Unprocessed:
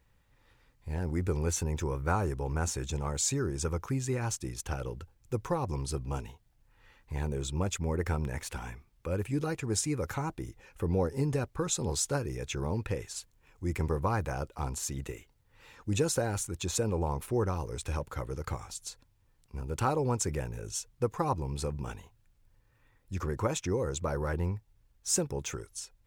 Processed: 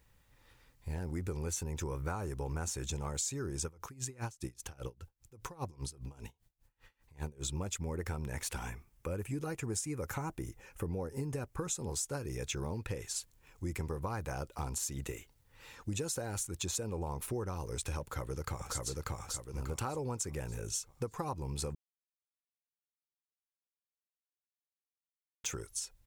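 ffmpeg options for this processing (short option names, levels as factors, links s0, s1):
-filter_complex "[0:a]asettb=1/sr,asplit=3[s0][s1][s2];[s0]atrim=end=3.654[s3];[s1]atrim=start=3.65:end=7.44,asetpts=PTS-STARTPTS,afade=t=in:d=0.004:c=qsin,afade=t=out:st=3.786:d=0.004:c=qsin,aeval=exprs='val(0)*pow(10,-27*(0.5-0.5*cos(2*PI*5*n/s))/20)':c=same[s4];[s2]atrim=start=7.436[s5];[s3][s4]acrossfade=d=0.004:c1=hsin:c2=qsin[s6];[s6][s5]acrossfade=d=0.004:c1=qsin:c2=hsin,asettb=1/sr,asplit=3[s7][s8][s9];[s7]atrim=end=8.694[s10];[s8]atrim=start=8.69:end=12.14,asetpts=PTS-STARTPTS,afade=t=in:d=0.004:c=qsin,afade=t=out:st=3.446:d=0.004:c=qsin,equalizer=f=4000:t=o:w=0.77:g=-6[s11];[s9]atrim=start=12.136[s12];[s10][s11]acrossfade=d=0.004:c1=hsin:c2=qsin[s13];[s13][s12]acrossfade=d=0.004:c1=qsin:c2=hsin,asplit=2[s14][s15];[s15]afade=t=in:st=18.01:d=0.01,afade=t=out:st=18.81:d=0.01,aecho=0:1:590|1180|1770|2360|2950:0.944061|0.330421|0.115647|0.0404766|0.0141668[s16];[s14][s16]amix=inputs=2:normalize=0,asplit=3[s17][s18][s19];[s17]atrim=end=21.75,asetpts=PTS-STARTPTS,afade=t=out:st=21.746:d=0.004:c=hsin[s20];[s18]atrim=start=21.75:end=25.44,asetpts=PTS-STARTPTS,volume=0[s21];[s19]atrim=start=25.44,asetpts=PTS-STARTPTS,afade=t=in:d=0.004:c=hsin[s22];[s20][s21][s22]concat=n=3:v=0:a=1,highshelf=f=4700:g=7,acompressor=threshold=0.02:ratio=6"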